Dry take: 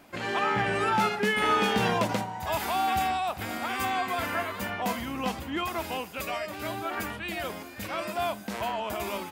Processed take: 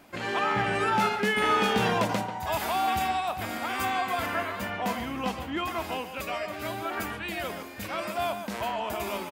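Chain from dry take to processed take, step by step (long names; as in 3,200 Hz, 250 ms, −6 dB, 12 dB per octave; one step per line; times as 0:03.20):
0:04.26–0:06.61: high-shelf EQ 6,500 Hz −4.5 dB
far-end echo of a speakerphone 140 ms, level −9 dB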